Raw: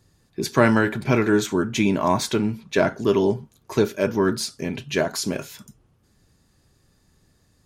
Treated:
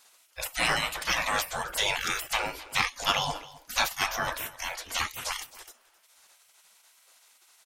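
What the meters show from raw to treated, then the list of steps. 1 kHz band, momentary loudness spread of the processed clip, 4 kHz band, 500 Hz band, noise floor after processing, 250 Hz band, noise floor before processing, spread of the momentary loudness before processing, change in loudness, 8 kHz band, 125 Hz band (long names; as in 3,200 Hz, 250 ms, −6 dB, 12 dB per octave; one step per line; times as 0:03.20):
−3.0 dB, 10 LU, +3.0 dB, −17.0 dB, −63 dBFS, −24.0 dB, −63 dBFS, 11 LU, −6.5 dB, −1.0 dB, −17.5 dB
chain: gate on every frequency bin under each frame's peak −25 dB weak
in parallel at −3 dB: soft clipping −34 dBFS, distortion −11 dB
on the sum: single-tap delay 264 ms −19 dB
level +8 dB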